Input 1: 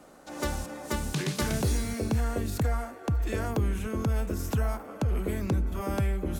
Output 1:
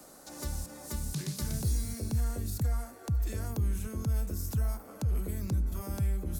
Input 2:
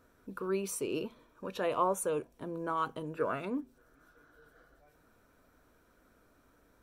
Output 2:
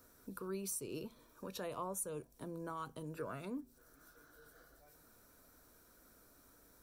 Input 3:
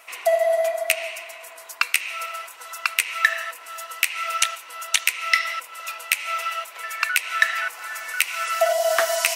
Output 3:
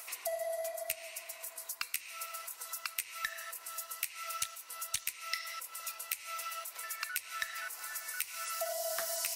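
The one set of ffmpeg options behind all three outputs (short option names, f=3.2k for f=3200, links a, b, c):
-filter_complex "[0:a]aexciter=amount=2.4:drive=7.8:freq=4.1k,acrossover=split=180[a][b];[b]acompressor=threshold=-48dB:ratio=2[c];[a][c]amix=inputs=2:normalize=0,volume=-1.5dB"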